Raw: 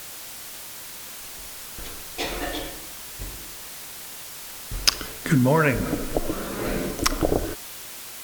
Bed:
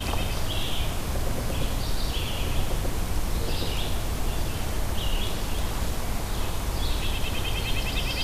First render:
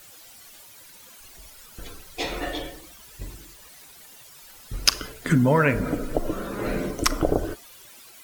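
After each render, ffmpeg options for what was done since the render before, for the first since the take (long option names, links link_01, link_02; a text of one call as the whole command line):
ffmpeg -i in.wav -af "afftdn=noise_reduction=13:noise_floor=-39" out.wav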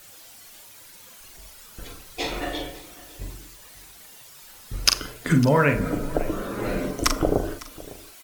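ffmpeg -i in.wav -filter_complex "[0:a]asplit=2[link_01][link_02];[link_02]adelay=42,volume=-7dB[link_03];[link_01][link_03]amix=inputs=2:normalize=0,aecho=1:1:554:0.106" out.wav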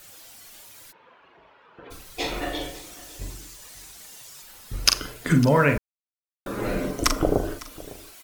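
ffmpeg -i in.wav -filter_complex "[0:a]asplit=3[link_01][link_02][link_03];[link_01]afade=type=out:start_time=0.91:duration=0.02[link_04];[link_02]highpass=190,equalizer=frequency=210:width_type=q:width=4:gain=-8,equalizer=frequency=450:width_type=q:width=4:gain=4,equalizer=frequency=960:width_type=q:width=4:gain=6,equalizer=frequency=2100:width_type=q:width=4:gain=-5,lowpass=frequency=2400:width=0.5412,lowpass=frequency=2400:width=1.3066,afade=type=in:start_time=0.91:duration=0.02,afade=type=out:start_time=1.9:duration=0.02[link_05];[link_03]afade=type=in:start_time=1.9:duration=0.02[link_06];[link_04][link_05][link_06]amix=inputs=3:normalize=0,asettb=1/sr,asplit=3[link_07][link_08][link_09];[link_07]atrim=end=2.614[link_10];[link_08]atrim=start=2.61:end=4.42,asetpts=PTS-STARTPTS,afade=type=in:duration=0.004:curve=qsin,afade=type=out:start_time=1.806:duration=0.004:curve=qsin,equalizer=frequency=6700:width=0.95:gain=5.5[link_11];[link_09]atrim=start=4.416[link_12];[link_10][link_11]acrossfade=duration=0.004:curve1=hsin:curve2=qsin[link_13];[link_13][link_12]acrossfade=duration=0.004:curve1=qsin:curve2=hsin,asplit=3[link_14][link_15][link_16];[link_14]atrim=end=5.78,asetpts=PTS-STARTPTS,afade=type=out:start_time=5.776:duration=0.004:curve=hsin[link_17];[link_15]atrim=start=5.78:end=6.46,asetpts=PTS-STARTPTS,volume=0[link_18];[link_16]atrim=start=6.46,asetpts=PTS-STARTPTS,afade=type=in:duration=0.004:curve=hsin[link_19];[link_17][link_18][link_19]concat=n=3:v=0:a=1" out.wav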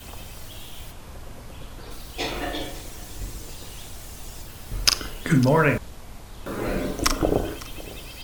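ffmpeg -i in.wav -i bed.wav -filter_complex "[1:a]volume=-12.5dB[link_01];[0:a][link_01]amix=inputs=2:normalize=0" out.wav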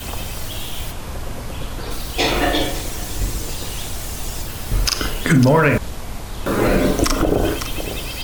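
ffmpeg -i in.wav -filter_complex "[0:a]asplit=2[link_01][link_02];[link_02]acontrast=82,volume=2dB[link_03];[link_01][link_03]amix=inputs=2:normalize=0,alimiter=limit=-5.5dB:level=0:latency=1:release=95" out.wav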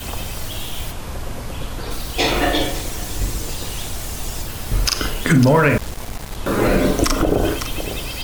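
ffmpeg -i in.wav -filter_complex "[0:a]asettb=1/sr,asplit=3[link_01][link_02][link_03];[link_01]atrim=end=5.224[link_04];[link_02]atrim=start=5.22:end=6.36,asetpts=PTS-STARTPTS,afade=type=in:duration=0.004:curve=qsin,afade=type=out:start_time=1.136:duration=0.004:curve=qsin,aeval=exprs='val(0)*gte(abs(val(0)),0.0355)':channel_layout=same[link_05];[link_03]atrim=start=6.356[link_06];[link_04][link_05]acrossfade=duration=0.004:curve1=hsin:curve2=qsin[link_07];[link_07][link_06]acrossfade=duration=0.004:curve1=qsin:curve2=hsin" out.wav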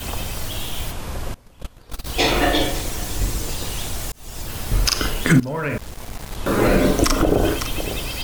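ffmpeg -i in.wav -filter_complex "[0:a]asettb=1/sr,asplit=3[link_01][link_02][link_03];[link_01]atrim=end=1.344[link_04];[link_02]atrim=start=1.34:end=2.06,asetpts=PTS-STARTPTS,afade=type=in:duration=0.004:curve=qsin,afade=type=out:start_time=0.716:duration=0.004:curve=qsin,agate=range=-22dB:threshold=-23dB:ratio=16:release=100:detection=peak[link_05];[link_03]atrim=start=2.056[link_06];[link_04][link_05]acrossfade=duration=0.004:curve1=hsin:curve2=qsin[link_07];[link_07][link_06]acrossfade=duration=0.004:curve1=qsin:curve2=hsin,asplit=3[link_08][link_09][link_10];[link_08]atrim=end=4.12,asetpts=PTS-STARTPTS,afade=type=out:start_time=4.116:duration=0.004:curve=hsin[link_11];[link_09]atrim=start=4.12:end=5.4,asetpts=PTS-STARTPTS,afade=type=in:duration=0.44,afade=type=out:start_time=1.276:duration=0.004:curve=hsin:silence=0.11885[link_12];[link_10]atrim=start=5.4,asetpts=PTS-STARTPTS,afade=type=in:duration=1.1:silence=0.11885[link_13];[link_11][link_12][link_13]concat=n=3:v=0:a=1" out.wav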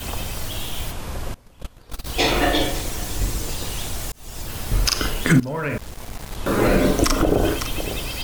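ffmpeg -i in.wav -af "volume=-1dB" out.wav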